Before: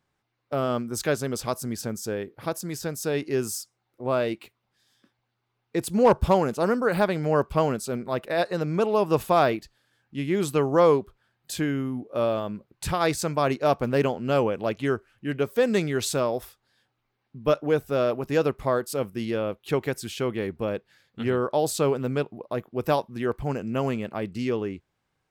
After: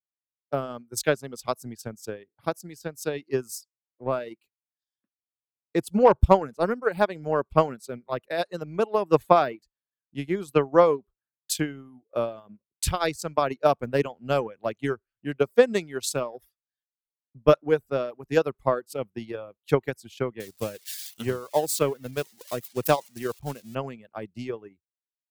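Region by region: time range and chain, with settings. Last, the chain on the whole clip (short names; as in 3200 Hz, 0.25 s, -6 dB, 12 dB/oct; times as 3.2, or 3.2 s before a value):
20.4–23.75 switching spikes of -21.5 dBFS + HPF 55 Hz + high shelf 6600 Hz -4 dB
whole clip: reverb removal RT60 0.84 s; transient shaper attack +8 dB, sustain -7 dB; three-band expander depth 70%; gain -5 dB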